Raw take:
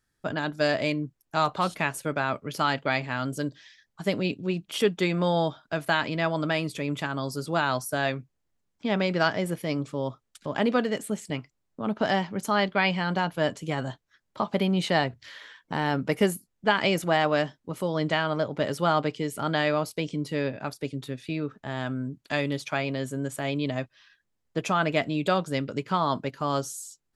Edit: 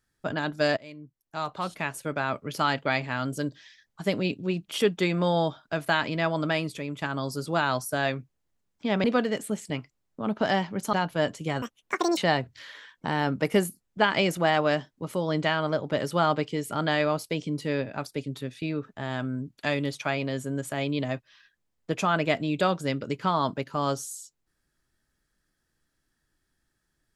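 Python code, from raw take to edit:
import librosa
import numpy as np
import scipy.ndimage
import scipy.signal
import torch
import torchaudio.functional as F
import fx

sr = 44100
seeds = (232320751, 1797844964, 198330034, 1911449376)

y = fx.edit(x, sr, fx.fade_in_from(start_s=0.77, length_s=1.71, floor_db=-23.0),
    fx.fade_out_to(start_s=6.56, length_s=0.46, floor_db=-7.5),
    fx.cut(start_s=9.04, length_s=1.6),
    fx.cut(start_s=12.53, length_s=0.62),
    fx.speed_span(start_s=13.84, length_s=1.0, speed=1.81), tone=tone)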